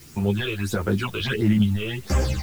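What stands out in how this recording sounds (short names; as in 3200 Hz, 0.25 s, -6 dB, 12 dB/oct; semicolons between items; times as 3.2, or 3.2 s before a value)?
phasing stages 8, 1.5 Hz, lowest notch 230–4100 Hz; a quantiser's noise floor 8-bit, dither triangular; a shimmering, thickened sound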